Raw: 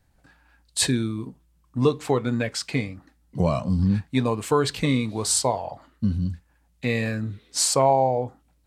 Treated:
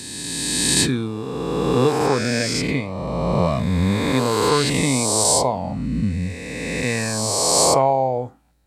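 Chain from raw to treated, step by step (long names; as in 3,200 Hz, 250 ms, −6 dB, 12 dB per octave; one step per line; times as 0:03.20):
peak hold with a rise ahead of every peak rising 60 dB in 2.45 s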